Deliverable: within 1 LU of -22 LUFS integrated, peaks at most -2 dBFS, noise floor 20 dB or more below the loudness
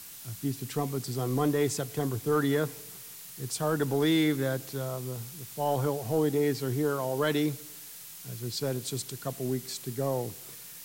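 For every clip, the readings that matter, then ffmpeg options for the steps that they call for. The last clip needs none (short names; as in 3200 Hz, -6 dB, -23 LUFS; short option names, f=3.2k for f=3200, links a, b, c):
noise floor -46 dBFS; noise floor target -51 dBFS; loudness -30.5 LUFS; peak -15.5 dBFS; loudness target -22.0 LUFS
-> -af "afftdn=nr=6:nf=-46"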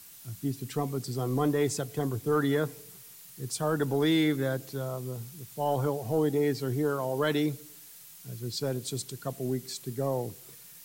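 noise floor -50 dBFS; noise floor target -51 dBFS
-> -af "afftdn=nr=6:nf=-50"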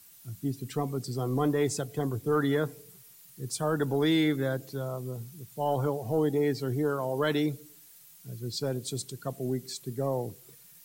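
noise floor -54 dBFS; loudness -30.5 LUFS; peak -16.0 dBFS; loudness target -22.0 LUFS
-> -af "volume=8.5dB"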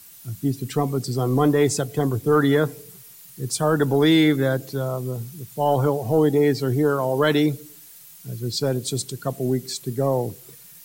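loudness -22.0 LUFS; peak -7.5 dBFS; noise floor -46 dBFS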